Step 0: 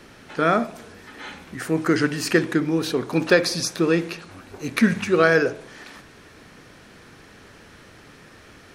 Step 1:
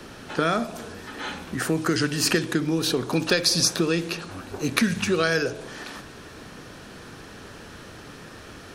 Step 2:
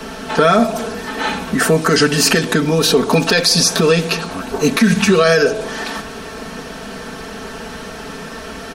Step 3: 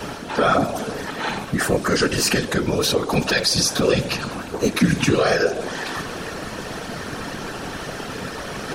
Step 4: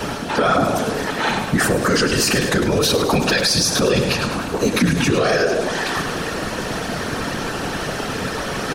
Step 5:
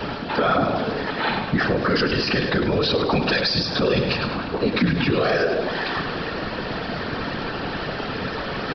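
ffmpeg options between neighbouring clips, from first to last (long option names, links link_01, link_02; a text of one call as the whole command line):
ffmpeg -i in.wav -filter_complex "[0:a]equalizer=frequency=2100:width_type=o:width=0.38:gain=-6,acrossover=split=110|2500[link_01][link_02][link_03];[link_02]acompressor=threshold=-27dB:ratio=6[link_04];[link_01][link_04][link_03]amix=inputs=3:normalize=0,volume=5.5dB" out.wav
ffmpeg -i in.wav -af "equalizer=frequency=740:width_type=o:width=1.1:gain=4,aecho=1:1:4.5:0.96,alimiter=level_in=11dB:limit=-1dB:release=50:level=0:latency=1,volume=-2dB" out.wav
ffmpeg -i in.wav -af "areverse,acompressor=mode=upward:threshold=-16dB:ratio=2.5,areverse,afftfilt=real='hypot(re,im)*cos(2*PI*random(0))':imag='hypot(re,im)*sin(2*PI*random(1))':win_size=512:overlap=0.75" out.wav
ffmpeg -i in.wav -filter_complex "[0:a]asplit=2[link_01][link_02];[link_02]asoftclip=type=tanh:threshold=-22.5dB,volume=-11dB[link_03];[link_01][link_03]amix=inputs=2:normalize=0,aecho=1:1:103|206|309|412:0.316|0.133|0.0558|0.0234,alimiter=level_in=10.5dB:limit=-1dB:release=50:level=0:latency=1,volume=-7dB" out.wav
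ffmpeg -i in.wav -af "aresample=11025,aresample=44100,volume=-3dB" out.wav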